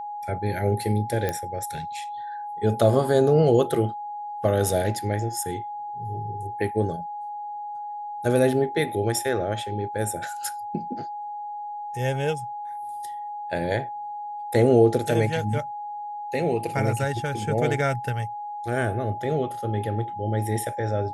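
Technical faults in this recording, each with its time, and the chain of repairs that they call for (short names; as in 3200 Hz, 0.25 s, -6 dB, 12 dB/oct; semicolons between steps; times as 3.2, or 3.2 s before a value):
tone 830 Hz -31 dBFS
1.29 pop -12 dBFS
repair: de-click; notch 830 Hz, Q 30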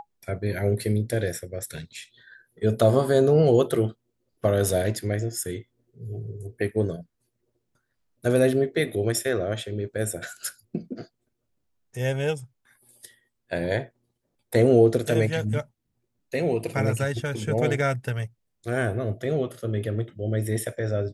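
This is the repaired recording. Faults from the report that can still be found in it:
none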